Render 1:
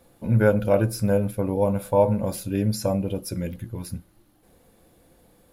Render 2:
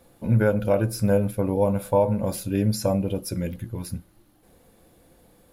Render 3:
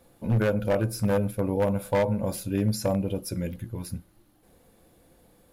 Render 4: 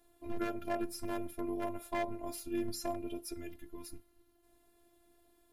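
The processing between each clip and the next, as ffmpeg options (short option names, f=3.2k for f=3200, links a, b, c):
-af "alimiter=limit=-11.5dB:level=0:latency=1:release=303,volume=1dB"
-af "aeval=exprs='0.2*(abs(mod(val(0)/0.2+3,4)-2)-1)':c=same,volume=-2.5dB"
-af "afftfilt=real='hypot(re,im)*cos(PI*b)':imag='0':win_size=512:overlap=0.75,volume=-5dB"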